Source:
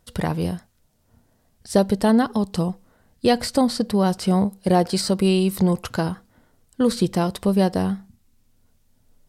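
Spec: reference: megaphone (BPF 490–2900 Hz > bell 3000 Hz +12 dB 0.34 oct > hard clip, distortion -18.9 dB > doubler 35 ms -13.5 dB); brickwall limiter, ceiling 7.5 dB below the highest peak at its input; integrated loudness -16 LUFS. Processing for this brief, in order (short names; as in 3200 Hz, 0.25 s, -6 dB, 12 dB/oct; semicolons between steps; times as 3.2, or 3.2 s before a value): limiter -12.5 dBFS; BPF 490–2900 Hz; bell 3000 Hz +12 dB 0.34 oct; hard clip -18.5 dBFS; doubler 35 ms -13.5 dB; gain +14.5 dB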